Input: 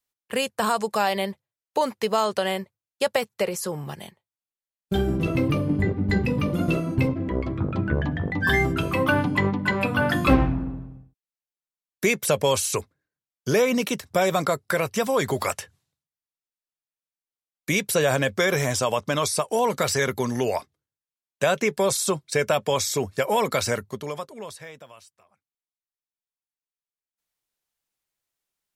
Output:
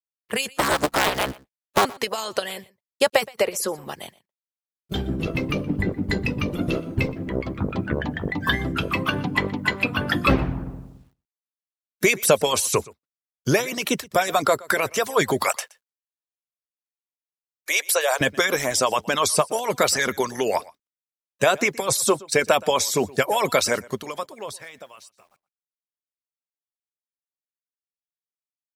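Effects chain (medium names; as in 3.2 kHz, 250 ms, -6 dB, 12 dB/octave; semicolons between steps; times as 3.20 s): 0.52–1.85 s: cycle switcher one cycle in 3, inverted; 15.44–18.21 s: inverse Chebyshev high-pass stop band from 200 Hz, stop band 50 dB; harmonic-percussive split harmonic -17 dB; bit crusher 12-bit; delay 121 ms -22.5 dB; trim +5.5 dB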